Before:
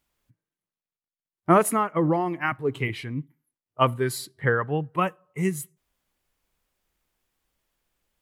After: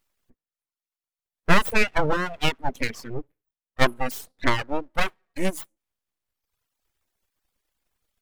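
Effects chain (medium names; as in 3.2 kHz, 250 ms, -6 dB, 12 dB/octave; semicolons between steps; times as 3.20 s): 1.68–2.49 s: dynamic bell 1.2 kHz, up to +6 dB, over -38 dBFS, Q 1.6; full-wave rectifier; reverb removal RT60 1.2 s; trim +3.5 dB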